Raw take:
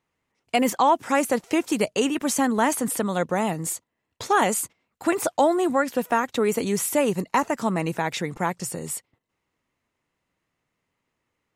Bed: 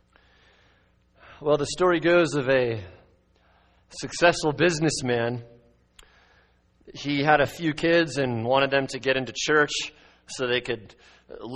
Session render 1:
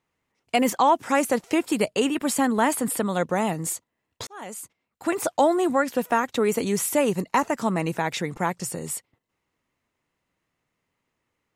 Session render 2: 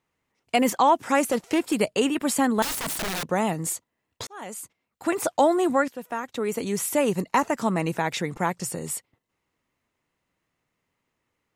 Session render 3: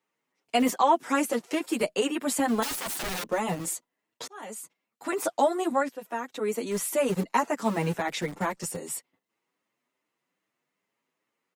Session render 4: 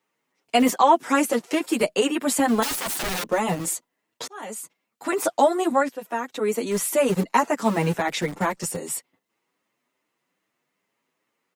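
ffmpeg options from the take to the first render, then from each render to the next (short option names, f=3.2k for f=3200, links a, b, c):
-filter_complex "[0:a]asettb=1/sr,asplit=3[a][b][c];[a]atrim=end=1.544[d];[b]atrim=start=1.54:end=3.16,asetpts=PTS-STARTPTS,afade=t=in:d=0.004:c=qsin,afade=t=out:st=1.616:d=0.004:c=qsin,bandreject=f=6.1k:w=5[e];[c]atrim=start=3.156[f];[d][e]acrossfade=d=0.004:c1=hsin:c2=qsin[g];[g][f]acrossfade=d=0.004:c1=qsin:c2=hsin,asplit=2[h][i];[h]atrim=end=4.27,asetpts=PTS-STARTPTS,afade=t=out:st=4.266:d=0.004:c=hsin[j];[i]atrim=start=4.27,asetpts=PTS-STARTPTS,afade=t=in:d=1.11[k];[j][k]concat=n=2:v=0:a=1"
-filter_complex "[0:a]asettb=1/sr,asplit=3[a][b][c];[a]atrim=end=1.304[d];[b]atrim=start=1.3:end=1.8,asetpts=PTS-STARTPTS,afade=t=in:d=0.004:c=qsin,afade=t=out:st=0.496:d=0.004:c=qsin,asoftclip=type=hard:threshold=-16.5dB[e];[c]atrim=start=1.796[f];[d][e]acrossfade=d=0.004:c1=hsin:c2=qsin[g];[g][f]acrossfade=d=0.004:c1=qsin:c2=hsin,asettb=1/sr,asplit=3[h][i][j];[h]atrim=end=2.624[k];[i]atrim=start=2.62:end=3.31,asetpts=PTS-STARTPTS,afade=t=in:d=0.004:c=qsin,afade=t=out:st=0.686:d=0.004:c=qsin,aeval=exprs='(mod(15.8*val(0)+1,2)-1)/15.8':c=same[l];[j]atrim=start=3.306[m];[k][l]acrossfade=d=0.004:c1=hsin:c2=qsin[n];[n][m]acrossfade=d=0.004:c1=qsin:c2=hsin,asplit=2[o][p];[o]atrim=end=5.88,asetpts=PTS-STARTPTS,afade=t=out:st=5.876:d=0.004:c=hsin:silence=0.199526[q];[p]atrim=start=5.88,asetpts=PTS-STARTPTS,afade=t=in:d=1.29:silence=0.199526[r];[q][r]concat=n=2:v=0:a=1"
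-filter_complex "[0:a]acrossover=split=160|1100|7200[a][b][c][d];[a]acrusher=bits=5:mix=0:aa=0.000001[e];[e][b][c][d]amix=inputs=4:normalize=0,asplit=2[f][g];[g]adelay=7.4,afreqshift=2.5[h];[f][h]amix=inputs=2:normalize=1"
-af "volume=5dB"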